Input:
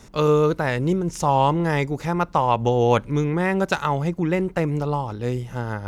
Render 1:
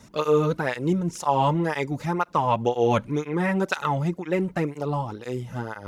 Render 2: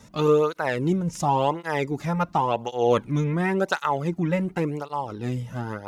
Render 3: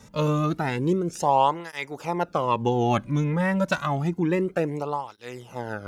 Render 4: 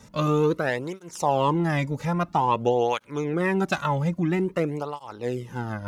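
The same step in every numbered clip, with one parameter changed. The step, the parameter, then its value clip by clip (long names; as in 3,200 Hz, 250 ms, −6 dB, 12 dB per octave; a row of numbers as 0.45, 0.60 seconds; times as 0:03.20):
through-zero flanger with one copy inverted, nulls at: 2, 0.92, 0.29, 0.5 Hertz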